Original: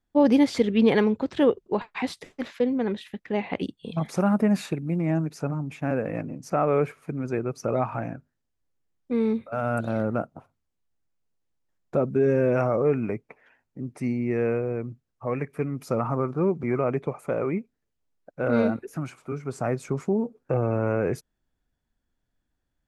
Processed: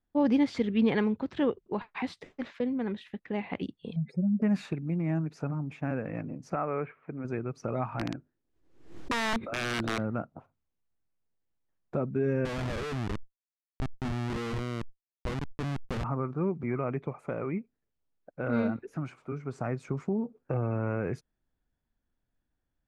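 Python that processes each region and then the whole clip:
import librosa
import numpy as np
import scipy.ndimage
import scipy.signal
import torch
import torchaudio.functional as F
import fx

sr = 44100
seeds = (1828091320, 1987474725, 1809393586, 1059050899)

y = fx.chain(x, sr, fx.spec_expand(power=3.2),
    fx.fixed_phaser(hz=2600.0, stages=4), at=(3.96, 4.42))
y = fx.chain(y, sr, fx.lowpass(hz=2500.0, slope=24),
    fx.low_shelf(hz=280.0, db=-8.0), at=(6.55, 7.25))
y = fx.chain(y, sr, fx.peak_eq(hz=340.0, db=11.5, octaves=0.73),
    fx.overflow_wrap(gain_db=17.5),
    fx.pre_swell(db_per_s=83.0), at=(7.99, 9.98))
y = fx.chain(y, sr, fx.schmitt(flips_db=-26.0),
    fx.sustainer(db_per_s=39.0), at=(12.45, 16.04))
y = fx.dynamic_eq(y, sr, hz=520.0, q=0.9, threshold_db=-34.0, ratio=4.0, max_db=-6)
y = scipy.signal.sosfilt(scipy.signal.bessel(2, 7300.0, 'lowpass', norm='mag', fs=sr, output='sos'), y)
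y = fx.high_shelf(y, sr, hz=4500.0, db=-10.0)
y = y * 10.0 ** (-3.0 / 20.0)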